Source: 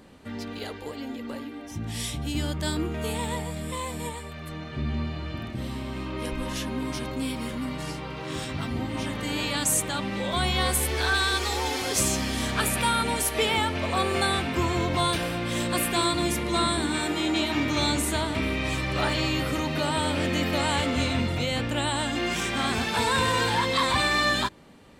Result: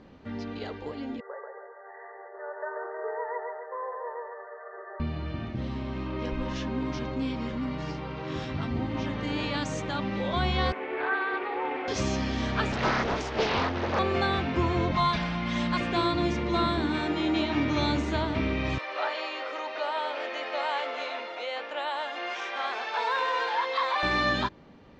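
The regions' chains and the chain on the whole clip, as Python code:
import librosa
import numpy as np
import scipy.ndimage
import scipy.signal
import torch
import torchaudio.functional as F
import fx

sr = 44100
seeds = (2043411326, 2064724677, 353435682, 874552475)

y = fx.chain(x, sr, fx.brickwall_bandpass(low_hz=380.0, high_hz=2000.0),
    fx.echo_feedback(ms=138, feedback_pct=41, wet_db=-3.5), at=(1.2, 5.0))
y = fx.chain(y, sr, fx.cheby1_bandpass(low_hz=300.0, high_hz=2400.0, order=3),
    fx.doppler_dist(depth_ms=0.11), at=(10.72, 11.88))
y = fx.chain(y, sr, fx.highpass(hz=48.0, slope=12),
    fx.doppler_dist(depth_ms=1.0), at=(12.72, 13.99))
y = fx.chain(y, sr, fx.peak_eq(hz=400.0, db=-12.5, octaves=0.62),
    fx.comb(ms=4.8, depth=0.84), at=(14.91, 15.81))
y = fx.chain(y, sr, fx.highpass(hz=520.0, slope=24),
    fx.high_shelf(hz=3700.0, db=-6.0), at=(18.78, 24.03))
y = scipy.signal.sosfilt(scipy.signal.butter(8, 6400.0, 'lowpass', fs=sr, output='sos'), y)
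y = fx.high_shelf(y, sr, hz=2800.0, db=-9.5)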